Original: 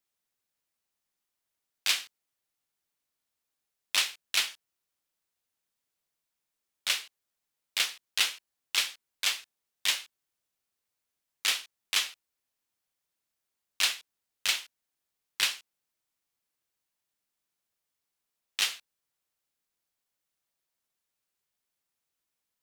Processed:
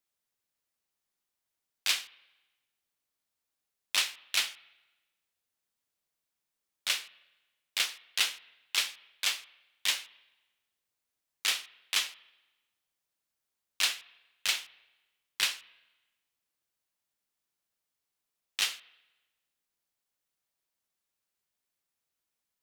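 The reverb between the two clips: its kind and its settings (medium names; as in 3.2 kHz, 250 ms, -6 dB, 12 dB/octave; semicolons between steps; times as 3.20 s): spring tank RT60 1.1 s, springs 35/44 ms, chirp 80 ms, DRR 18.5 dB; trim -1.5 dB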